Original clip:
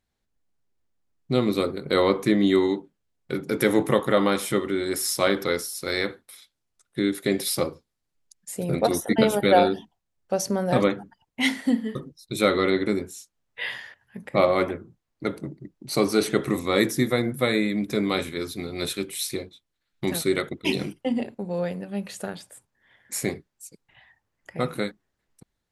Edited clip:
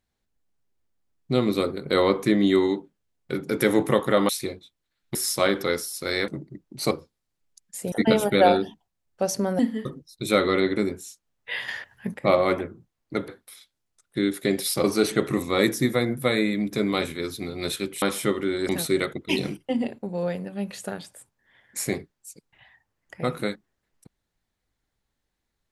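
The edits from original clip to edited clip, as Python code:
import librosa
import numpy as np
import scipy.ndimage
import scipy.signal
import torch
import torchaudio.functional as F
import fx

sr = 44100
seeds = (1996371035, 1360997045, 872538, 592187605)

y = fx.edit(x, sr, fx.swap(start_s=4.29, length_s=0.67, other_s=19.19, other_length_s=0.86),
    fx.swap(start_s=6.09, length_s=1.56, other_s=15.38, other_length_s=0.63),
    fx.cut(start_s=8.66, length_s=0.37),
    fx.cut(start_s=10.7, length_s=0.99),
    fx.clip_gain(start_s=13.78, length_s=0.46, db=8.5), tone=tone)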